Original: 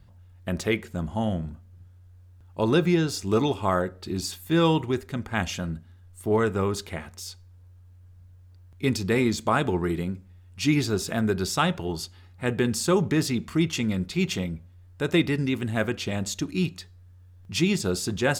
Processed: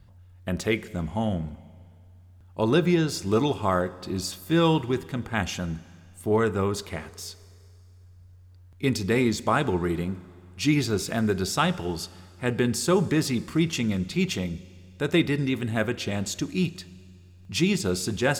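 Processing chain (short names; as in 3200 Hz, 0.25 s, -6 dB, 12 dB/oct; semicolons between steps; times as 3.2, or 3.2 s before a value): Schroeder reverb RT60 2.3 s, combs from 33 ms, DRR 18.5 dB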